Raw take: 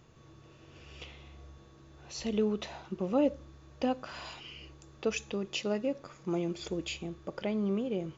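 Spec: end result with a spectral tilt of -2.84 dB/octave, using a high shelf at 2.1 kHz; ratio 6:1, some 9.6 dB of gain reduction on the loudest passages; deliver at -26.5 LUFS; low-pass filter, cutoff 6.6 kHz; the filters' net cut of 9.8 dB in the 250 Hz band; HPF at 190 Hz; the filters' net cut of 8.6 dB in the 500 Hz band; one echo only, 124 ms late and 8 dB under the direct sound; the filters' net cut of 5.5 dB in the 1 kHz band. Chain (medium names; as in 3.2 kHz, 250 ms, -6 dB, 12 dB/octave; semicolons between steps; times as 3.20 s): high-pass 190 Hz; low-pass 6.6 kHz; peaking EQ 250 Hz -8.5 dB; peaking EQ 500 Hz -7 dB; peaking EQ 1 kHz -5.5 dB; treble shelf 2.1 kHz +7 dB; compression 6:1, threshold -38 dBFS; delay 124 ms -8 dB; trim +16.5 dB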